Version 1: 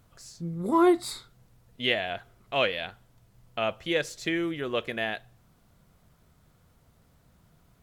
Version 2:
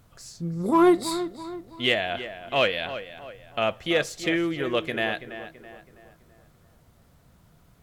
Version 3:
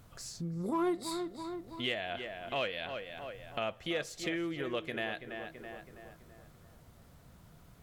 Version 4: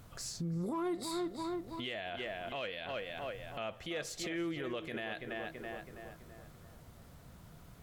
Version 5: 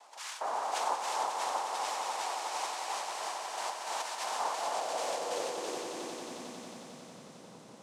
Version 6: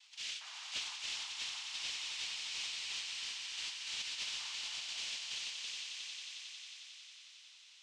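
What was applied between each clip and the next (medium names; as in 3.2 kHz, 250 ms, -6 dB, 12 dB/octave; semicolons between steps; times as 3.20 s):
in parallel at -6 dB: overload inside the chain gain 19 dB; on the sum: tape echo 329 ms, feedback 48%, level -10.5 dB, low-pass 2.4 kHz
compression 2:1, threshold -41 dBFS, peak gain reduction 14.5 dB
peak limiter -32.5 dBFS, peak gain reduction 10.5 dB; trim +2.5 dB
noise-vocoded speech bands 2; echo with a slow build-up 90 ms, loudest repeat 5, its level -10 dB; high-pass sweep 860 Hz -> 160 Hz, 4.49–7.16 s
Chebyshev high-pass 2.8 kHz, order 3; saturation -36 dBFS, distortion -19 dB; distance through air 140 m; trim +9.5 dB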